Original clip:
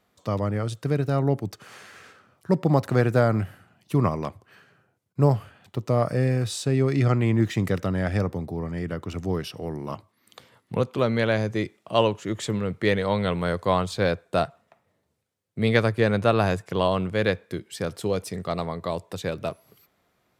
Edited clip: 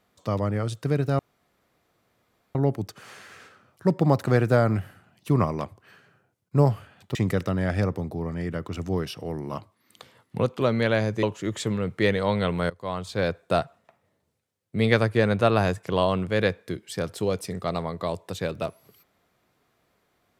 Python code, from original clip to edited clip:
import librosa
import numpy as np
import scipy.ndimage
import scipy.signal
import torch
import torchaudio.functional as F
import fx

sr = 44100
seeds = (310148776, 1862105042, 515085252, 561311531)

y = fx.edit(x, sr, fx.insert_room_tone(at_s=1.19, length_s=1.36),
    fx.cut(start_s=5.79, length_s=1.73),
    fx.cut(start_s=11.6, length_s=0.46),
    fx.fade_in_from(start_s=13.53, length_s=0.7, floor_db=-20.5), tone=tone)